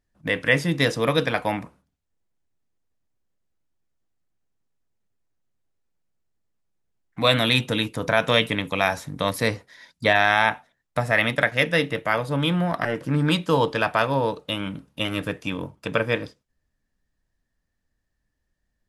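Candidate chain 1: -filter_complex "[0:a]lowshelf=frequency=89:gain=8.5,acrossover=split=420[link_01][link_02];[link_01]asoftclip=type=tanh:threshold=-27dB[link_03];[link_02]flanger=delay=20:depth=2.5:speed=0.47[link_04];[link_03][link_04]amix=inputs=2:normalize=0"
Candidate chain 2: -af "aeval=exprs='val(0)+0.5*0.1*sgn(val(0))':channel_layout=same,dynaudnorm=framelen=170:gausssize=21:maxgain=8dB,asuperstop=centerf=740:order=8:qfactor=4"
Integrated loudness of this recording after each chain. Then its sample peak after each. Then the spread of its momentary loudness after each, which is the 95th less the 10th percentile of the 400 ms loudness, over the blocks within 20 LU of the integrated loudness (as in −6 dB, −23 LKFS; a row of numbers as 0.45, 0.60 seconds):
−26.0, −18.5 LKFS; −6.5, −1.0 dBFS; 10, 12 LU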